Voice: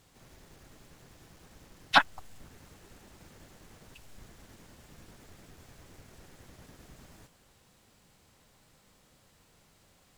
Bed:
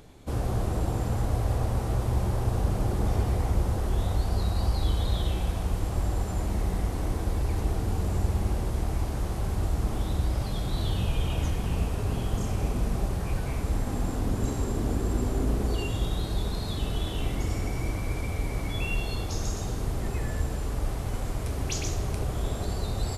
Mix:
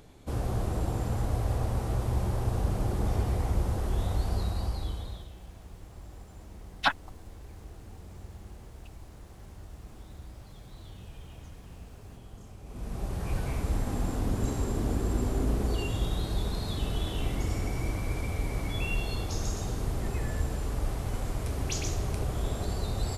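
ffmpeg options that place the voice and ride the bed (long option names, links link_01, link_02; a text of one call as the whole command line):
ffmpeg -i stem1.wav -i stem2.wav -filter_complex "[0:a]adelay=4900,volume=-4.5dB[link_01];[1:a]volume=15dB,afade=type=out:start_time=4.32:duration=0.96:silence=0.149624,afade=type=in:start_time=12.65:duration=0.72:silence=0.133352[link_02];[link_01][link_02]amix=inputs=2:normalize=0" out.wav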